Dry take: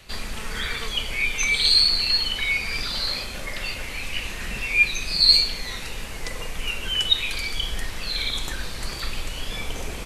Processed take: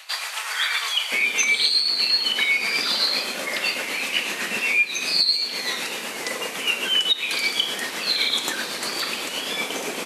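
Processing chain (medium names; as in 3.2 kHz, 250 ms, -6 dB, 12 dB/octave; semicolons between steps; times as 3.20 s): high-pass 750 Hz 24 dB/octave, from 1.12 s 230 Hz; compression 16:1, threshold -24 dBFS, peak gain reduction 15 dB; tremolo 7.9 Hz, depth 36%; trim +8.5 dB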